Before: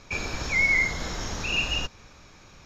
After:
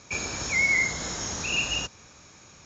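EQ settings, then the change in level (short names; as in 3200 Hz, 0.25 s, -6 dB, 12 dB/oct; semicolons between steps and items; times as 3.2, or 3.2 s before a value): HPF 77 Hz 12 dB/oct; synth low-pass 7000 Hz, resonance Q 5.8; air absorption 58 m; -1.0 dB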